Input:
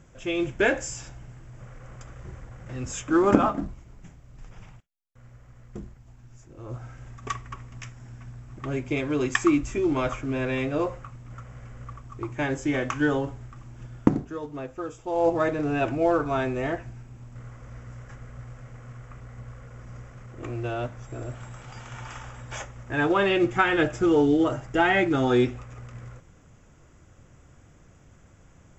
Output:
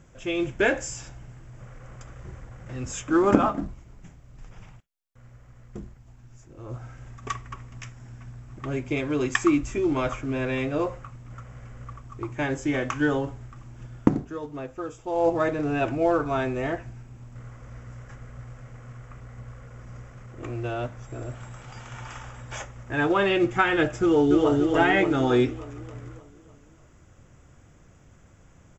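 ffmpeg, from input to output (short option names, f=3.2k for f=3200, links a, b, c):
-filter_complex "[0:a]asplit=2[a][b];[b]afade=t=in:st=24.01:d=0.01,afade=t=out:st=24.55:d=0.01,aecho=0:1:290|580|870|1160|1450|1740|2030|2320:0.749894|0.412442|0.226843|0.124764|0.06862|0.037741|0.0207576|0.0114167[c];[a][c]amix=inputs=2:normalize=0"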